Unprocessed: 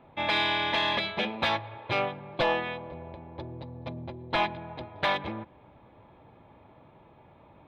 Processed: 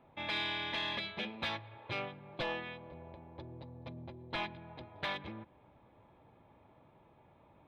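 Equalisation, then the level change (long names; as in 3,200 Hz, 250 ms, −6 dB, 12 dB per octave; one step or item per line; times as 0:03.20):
dynamic equaliser 750 Hz, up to −6 dB, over −42 dBFS, Q 0.82
−8.0 dB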